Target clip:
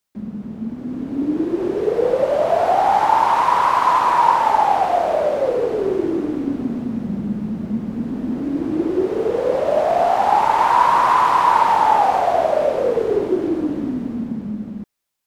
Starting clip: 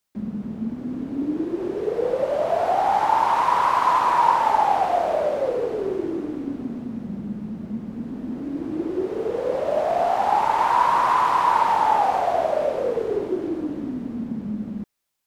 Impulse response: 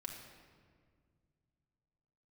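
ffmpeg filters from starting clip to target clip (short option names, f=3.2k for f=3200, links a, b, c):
-af "dynaudnorm=f=110:g=21:m=7dB"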